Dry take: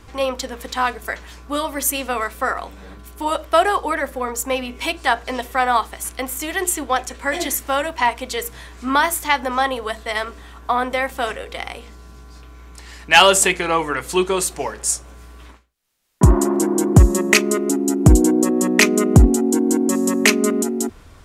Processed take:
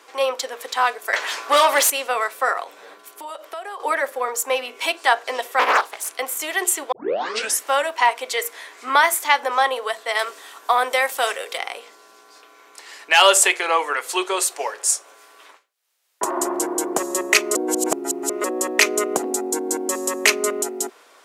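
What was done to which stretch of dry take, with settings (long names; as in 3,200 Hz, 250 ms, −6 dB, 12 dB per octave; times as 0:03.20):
0:01.13–0:01.90: mid-hump overdrive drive 22 dB, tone 5,400 Hz, clips at −7 dBFS
0:02.63–0:03.80: downward compressor, threshold −31 dBFS
0:05.59–0:06.09: highs frequency-modulated by the lows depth 0.87 ms
0:06.92: tape start 0.69 s
0:08.25–0:09.19: parametric band 2,100 Hz +6 dB 0.24 octaves
0:10.19–0:11.58: high-shelf EQ 4,100 Hz +10 dB
0:13.13–0:16.37: low-shelf EQ 200 Hz −12 dB
0:17.55–0:18.44: reverse
0:19.33–0:19.80: notch filter 3,000 Hz, Q 10
whole clip: high-pass filter 420 Hz 24 dB per octave; boost into a limiter +2 dB; level −1 dB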